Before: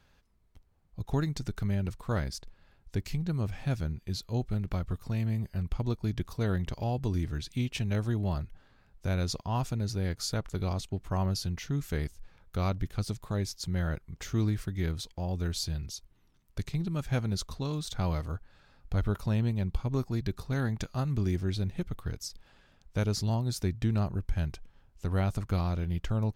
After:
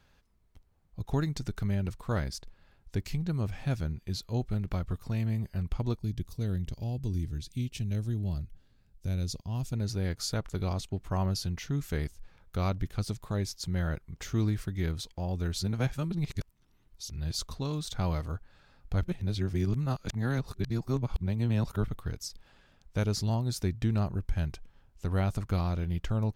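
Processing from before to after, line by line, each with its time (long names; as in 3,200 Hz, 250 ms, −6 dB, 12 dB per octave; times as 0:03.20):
0:05.99–0:09.73: parametric band 1,100 Hz −15 dB 2.7 octaves
0:15.60–0:17.39: reverse
0:19.03–0:21.88: reverse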